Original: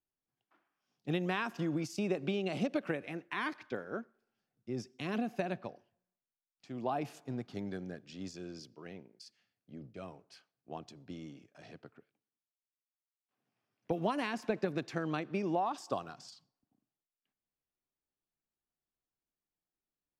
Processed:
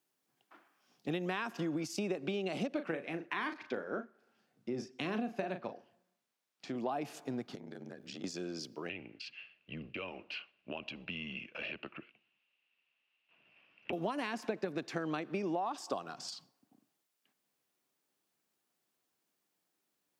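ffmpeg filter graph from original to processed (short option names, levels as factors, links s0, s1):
-filter_complex "[0:a]asettb=1/sr,asplit=3[s0][s1][s2];[s0]atrim=end=2.734[s3];[s1]atrim=start=2.73:end=6.76,asetpts=PTS-STARTPTS,afade=t=in:d=0.004:c=qsin,afade=t=out:st=4.026:d=0.004:c=qsin,highshelf=f=6700:g=-9,asplit=2[s4][s5];[s5]adelay=37,volume=0.355[s6];[s4][s6]amix=inputs=2:normalize=0,atrim=end_sample=177723[s7];[s2]atrim=start=6.756[s8];[s3][s7]acrossfade=d=0.004:c1=hsin:c2=qsin[s9];[s9][s8]acrossfade=d=0.004:c1=qsin:c2=hsin,asettb=1/sr,asplit=3[s10][s11][s12];[s10]atrim=end=7.554[s13];[s11]atrim=start=7.55:end=8.24,asetpts=PTS-STARTPTS,afade=t=in:d=0.004:c=qsin,afade=t=out:st=0.686:d=0.004:c=qsin,highpass=57,aeval=exprs='val(0)*sin(2*PI*36*n/s)':c=same,acompressor=threshold=0.00251:ratio=16:attack=3.2:release=140:knee=1:detection=peak[s14];[s12]atrim=start=8.236[s15];[s13][s14]acrossfade=d=0.004:c1=hsin:c2=qsin[s16];[s16][s15]acrossfade=d=0.004:c1=qsin:c2=hsin,asettb=1/sr,asplit=3[s17][s18][s19];[s17]atrim=end=8.894[s20];[s18]atrim=start=8.89:end=13.93,asetpts=PTS-STARTPTS,afade=t=in:d=0.004:c=qsin,afade=t=out:st=5.036:d=0.004:c=qsin,acompressor=threshold=0.00398:ratio=2:attack=3.2:release=140:knee=1:detection=peak,lowpass=f=2800:t=q:w=12,afreqshift=-90[s21];[s19]atrim=start=13.926[s22];[s20][s21]acrossfade=d=0.004:c1=hsin:c2=qsin[s23];[s23][s22]acrossfade=d=0.004:c1=qsin:c2=hsin,highpass=190,acompressor=threshold=0.00251:ratio=2.5,volume=3.98"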